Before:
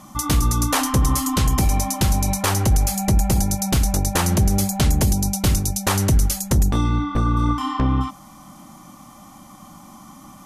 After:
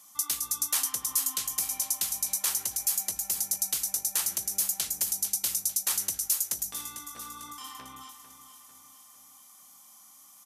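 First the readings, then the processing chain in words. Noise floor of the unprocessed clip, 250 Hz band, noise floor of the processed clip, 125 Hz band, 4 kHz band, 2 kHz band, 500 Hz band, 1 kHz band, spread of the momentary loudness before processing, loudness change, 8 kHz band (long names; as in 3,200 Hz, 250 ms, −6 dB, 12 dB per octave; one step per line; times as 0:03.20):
−45 dBFS, −32.0 dB, −55 dBFS, −39.0 dB, −7.0 dB, −14.0 dB, −25.5 dB, −19.5 dB, 3 LU, −7.5 dB, −2.0 dB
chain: first difference
on a send: repeating echo 448 ms, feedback 54%, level −11.5 dB
on the sum: level −3 dB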